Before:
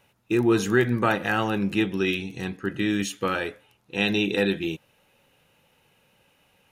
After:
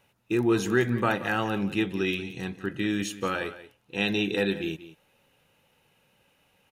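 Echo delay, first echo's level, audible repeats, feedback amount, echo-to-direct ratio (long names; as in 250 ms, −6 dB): 181 ms, −15.0 dB, 1, repeats not evenly spaced, −15.0 dB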